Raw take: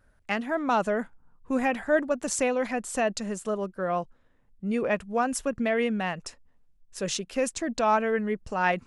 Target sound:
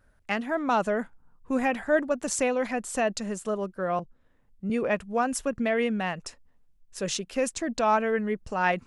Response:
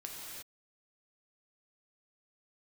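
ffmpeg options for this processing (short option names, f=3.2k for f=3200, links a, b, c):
-filter_complex "[0:a]asettb=1/sr,asplit=3[a][b][c];[a]atrim=end=3.994[d];[b]atrim=start=3.99:end=4.7,asetpts=PTS-STARTPTS,afade=t=in:d=0.004:c=qsin,afade=t=out:st=0.706:d=0.004:c=qsin,acrossover=split=400[e][f];[f]acompressor=threshold=-47dB:ratio=6[g];[e][g]amix=inputs=2:normalize=0[h];[c]atrim=start=4.696[i];[d][h]acrossfade=d=0.004:c1=hsin:c2=qsin[j];[j][i]acrossfade=d=0.004:c1=qsin:c2=hsin"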